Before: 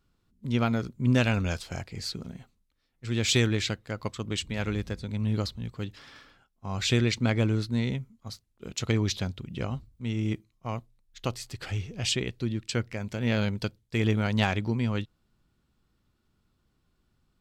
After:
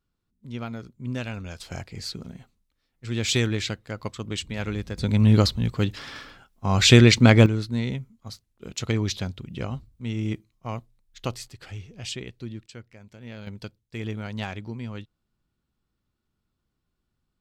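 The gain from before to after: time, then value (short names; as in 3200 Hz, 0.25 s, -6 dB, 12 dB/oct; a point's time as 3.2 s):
-8 dB
from 1.6 s +0.5 dB
from 4.98 s +11 dB
from 7.46 s +1 dB
from 11.48 s -6 dB
from 12.66 s -14 dB
from 13.47 s -7 dB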